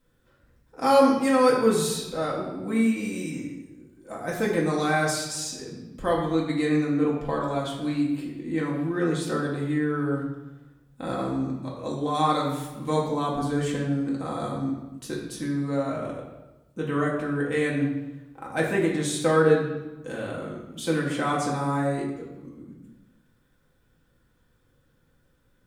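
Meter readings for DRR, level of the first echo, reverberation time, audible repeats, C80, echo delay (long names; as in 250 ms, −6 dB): −4.0 dB, no echo audible, 1.1 s, no echo audible, 5.5 dB, no echo audible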